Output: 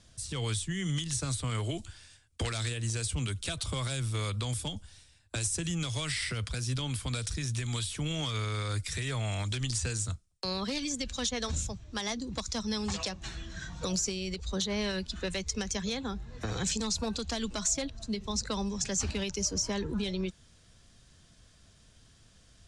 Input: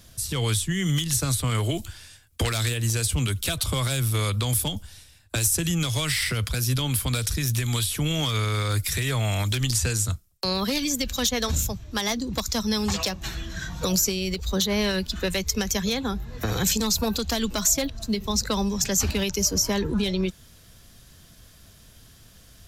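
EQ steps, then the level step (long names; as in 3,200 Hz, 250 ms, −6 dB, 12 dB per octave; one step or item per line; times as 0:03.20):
Butterworth low-pass 10,000 Hz 72 dB per octave
−8.0 dB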